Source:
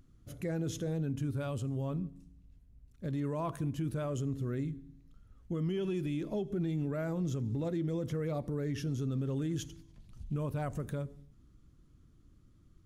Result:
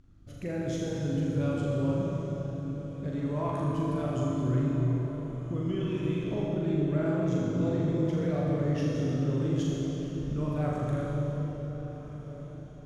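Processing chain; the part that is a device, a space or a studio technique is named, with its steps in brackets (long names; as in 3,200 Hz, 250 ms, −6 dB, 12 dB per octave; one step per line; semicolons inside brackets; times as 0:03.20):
high-frequency loss of the air 64 metres
tunnel (flutter between parallel walls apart 6.9 metres, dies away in 0.6 s; convolution reverb RT60 4.2 s, pre-delay 40 ms, DRR −2 dB)
feedback delay with all-pass diffusion 1,441 ms, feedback 43%, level −15 dB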